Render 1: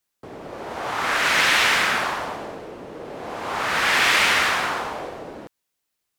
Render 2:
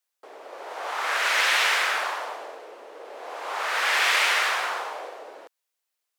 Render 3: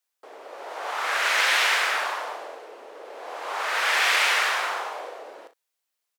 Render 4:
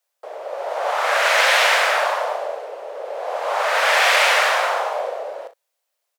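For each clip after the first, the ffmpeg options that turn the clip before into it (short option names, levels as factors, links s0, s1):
-af "highpass=f=450:w=0.5412,highpass=f=450:w=1.3066,volume=0.668"
-af "aecho=1:1:37|62:0.266|0.168"
-af "highpass=f=570:t=q:w=3.6,volume=1.58"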